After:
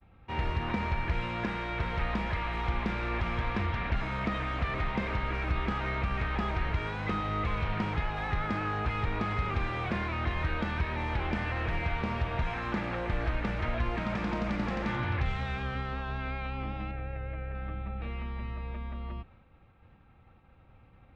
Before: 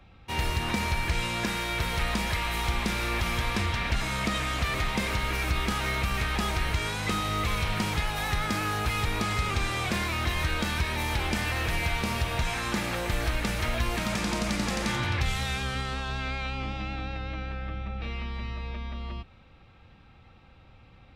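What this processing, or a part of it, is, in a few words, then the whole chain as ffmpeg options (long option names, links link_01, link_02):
hearing-loss simulation: -filter_complex "[0:a]asettb=1/sr,asplit=3[link_01][link_02][link_03];[link_01]atrim=end=16.914[link_04];[link_02]atrim=start=16.91:end=17.55,asetpts=PTS-STARTPTS,afade=type=in:duration=0.004:curve=qsin,afade=type=out:start_time=0.636:duration=0.004:curve=qsin,equalizer=frequency=125:width_type=o:width=1:gain=4,equalizer=frequency=250:width_type=o:width=1:gain=-12,equalizer=frequency=500:width_type=o:width=1:gain=6,equalizer=frequency=1000:width_type=o:width=1:gain=-8,equalizer=frequency=2000:width_type=o:width=1:gain=4,equalizer=frequency=4000:width_type=o:width=1:gain=-11,equalizer=frequency=8000:width_type=o:width=1:gain=-4[link_05];[link_03]atrim=start=17.546[link_06];[link_04][link_05]acrossfade=duration=0.004:curve1=hsin:curve2=qsin[link_07];[link_07][link_06]acrossfade=duration=0.004:curve1=qsin:curve2=hsin,lowpass=2000,agate=range=-33dB:threshold=-51dB:ratio=3:detection=peak,volume=-2dB"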